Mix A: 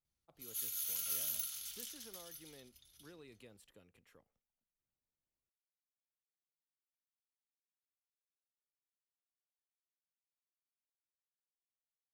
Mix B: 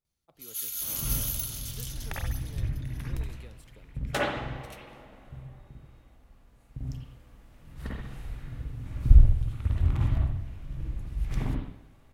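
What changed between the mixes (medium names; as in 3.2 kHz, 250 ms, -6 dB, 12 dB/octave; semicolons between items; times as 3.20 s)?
speech +5.0 dB; first sound +6.5 dB; second sound: unmuted; reverb: on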